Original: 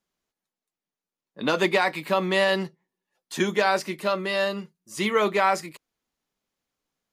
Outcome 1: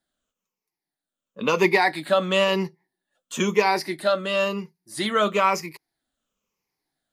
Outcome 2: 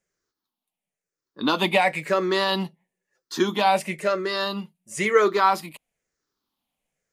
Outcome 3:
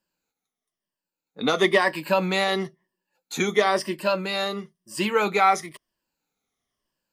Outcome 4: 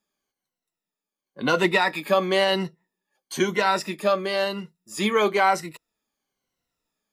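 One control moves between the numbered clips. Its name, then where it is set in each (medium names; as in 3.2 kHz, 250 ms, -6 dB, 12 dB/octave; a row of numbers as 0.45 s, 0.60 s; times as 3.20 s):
drifting ripple filter, ripples per octave: 0.8, 0.52, 1.3, 2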